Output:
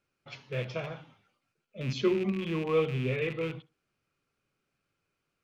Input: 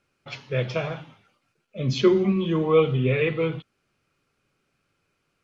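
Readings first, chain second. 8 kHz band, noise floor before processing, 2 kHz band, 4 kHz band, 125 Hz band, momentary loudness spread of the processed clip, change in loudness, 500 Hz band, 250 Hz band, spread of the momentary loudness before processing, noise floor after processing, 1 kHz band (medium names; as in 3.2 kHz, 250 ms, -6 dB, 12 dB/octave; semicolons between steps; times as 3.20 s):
no reading, -74 dBFS, -6.0 dB, -7.5 dB, -8.5 dB, 19 LU, -8.0 dB, -8.5 dB, -8.5 dB, 19 LU, -83 dBFS, -8.0 dB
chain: rattle on loud lows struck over -28 dBFS, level -23 dBFS; tape echo 67 ms, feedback 22%, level -18.5 dB, low-pass 2.4 kHz; trim -8.5 dB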